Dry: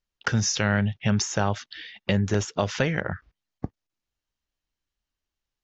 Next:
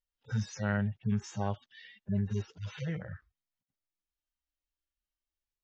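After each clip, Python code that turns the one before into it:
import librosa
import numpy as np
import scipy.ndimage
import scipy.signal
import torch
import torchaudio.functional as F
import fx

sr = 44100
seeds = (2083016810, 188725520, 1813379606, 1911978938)

y = fx.hpss_only(x, sr, part='harmonic')
y = y * 10.0 ** (-7.0 / 20.0)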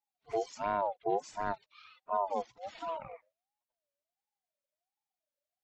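y = fx.env_flanger(x, sr, rest_ms=9.1, full_db=-27.5)
y = fx.ring_lfo(y, sr, carrier_hz=700.0, swing_pct=20, hz=1.4)
y = y * 10.0 ** (2.0 / 20.0)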